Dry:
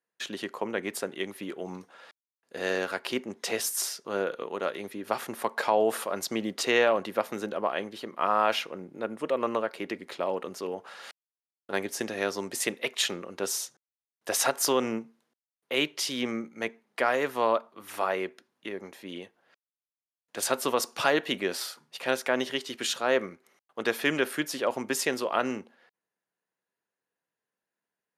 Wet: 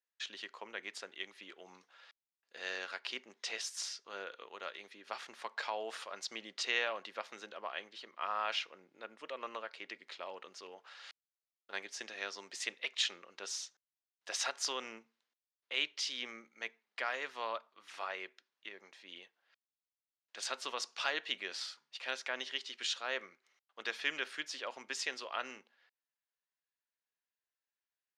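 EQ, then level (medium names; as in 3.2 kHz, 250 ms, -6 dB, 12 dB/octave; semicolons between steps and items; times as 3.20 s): band-pass filter 6.7 kHz, Q 0.65; distance through air 150 m; +2.0 dB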